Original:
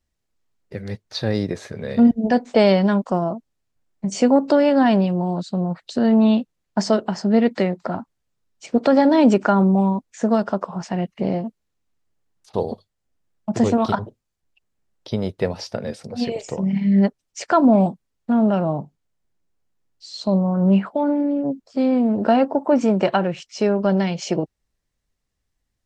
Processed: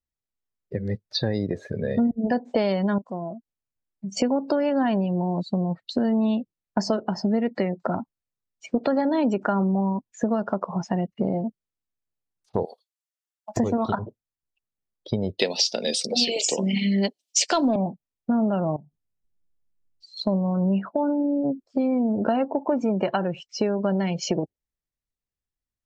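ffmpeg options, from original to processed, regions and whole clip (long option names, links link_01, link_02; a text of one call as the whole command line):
ffmpeg -i in.wav -filter_complex "[0:a]asettb=1/sr,asplit=3[link_01][link_02][link_03];[link_01]atrim=end=2.984[link_04];[link_02]atrim=start=2.98:end=4.17,asetpts=PTS-STARTPTS,afade=type=in:duration=0.004:curve=qsin,afade=type=out:start_time=1.186:duration=0.004:curve=qsin,acompressor=threshold=-53dB:ratio=1.5:attack=3.2:release=140:knee=1:detection=peak,volume=22.5dB,asoftclip=hard,volume=-22.5dB[link_05];[link_03]atrim=start=4.166[link_06];[link_04][link_05]acrossfade=duration=0.004:curve1=hsin:curve2=qsin[link_07];[link_07][link_06]acrossfade=duration=0.004:curve1=qsin:curve2=hsin,asettb=1/sr,asplit=3[link_08][link_09][link_10];[link_08]atrim=end=12.654[link_11];[link_09]atrim=start=12.65:end=13.57,asetpts=PTS-STARTPTS,afade=type=in:duration=0.004:curve=qsin,afade=type=out:start_time=0.916:duration=0.004:curve=qsin,highpass=1100,highshelf=frequency=4000:gain=10.5,aeval=exprs='(mod(11.9*val(0)+1,2)-1)/11.9':channel_layout=same[link_12];[link_10]atrim=start=13.566[link_13];[link_11][link_12]acrossfade=duration=0.004:curve1=hsin:curve2=qsin[link_14];[link_14][link_13]acrossfade=duration=0.004:curve1=qsin:curve2=hsin,asettb=1/sr,asplit=3[link_15][link_16][link_17];[link_15]atrim=end=15.394[link_18];[link_16]atrim=start=15.39:end=17.76,asetpts=PTS-STARTPTS,afade=type=in:duration=0.004:curve=qsin,afade=type=out:start_time=2.366:duration=0.004:curve=qsin,highpass=frequency=230:width=0.5412,highpass=frequency=230:width=1.3066,highshelf=frequency=2200:width_type=q:width=1.5:gain=13.5,acontrast=31[link_19];[link_17]atrim=start=17.756[link_20];[link_18][link_19]acrossfade=duration=0.004:curve1=hsin:curve2=qsin[link_21];[link_21][link_20]acrossfade=duration=0.004:curve1=qsin:curve2=hsin,asettb=1/sr,asplit=3[link_22][link_23][link_24];[link_22]atrim=end=18.764[link_25];[link_23]atrim=start=18.76:end=20.17,asetpts=PTS-STARTPTS,afade=type=in:duration=0.004:curve=qsin,afade=type=out:start_time=1.406:duration=0.004:curve=qsin,lowshelf=frequency=390:gain=10,acompressor=threshold=-41dB:ratio=20:attack=3.2:release=140:knee=1:detection=peak[link_26];[link_24]atrim=start=20.166[link_27];[link_25][link_26]acrossfade=duration=0.004:curve1=hsin:curve2=qsin[link_28];[link_28][link_27]acrossfade=duration=0.004:curve1=qsin:curve2=hsin,afftdn=noise_reduction=19:noise_floor=-34,acompressor=threshold=-25dB:ratio=4,volume=3.5dB" out.wav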